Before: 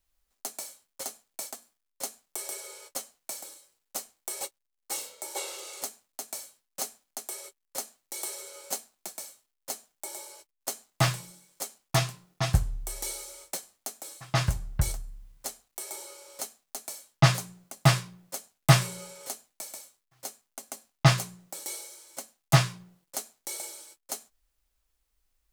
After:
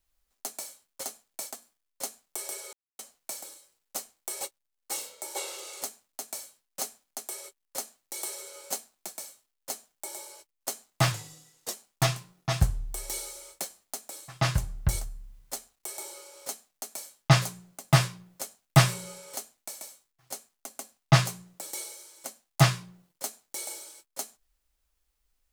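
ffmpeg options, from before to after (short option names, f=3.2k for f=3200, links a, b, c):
-filter_complex "[0:a]asplit=5[a][b][c][d][e];[a]atrim=end=2.73,asetpts=PTS-STARTPTS,afade=t=out:st=2.726:d=0.004:c=hsin[f];[b]atrim=start=2.73:end=2.99,asetpts=PTS-STARTPTS,volume=0[g];[c]atrim=start=2.99:end=11.124,asetpts=PTS-STARTPTS,afade=t=in:d=0.004:c=hsin[h];[d]atrim=start=11.12:end=11.66,asetpts=PTS-STARTPTS,asetrate=38808,aresample=44100,atrim=end_sample=27061,asetpts=PTS-STARTPTS[i];[e]atrim=start=11.656[j];[f][g][h]concat=n=3:v=0:a=1[k];[k][i]acrossfade=d=0.004:c1=hsin:c2=hsin[l];[l][j]acrossfade=d=0.004:c1=hsin:c2=hsin"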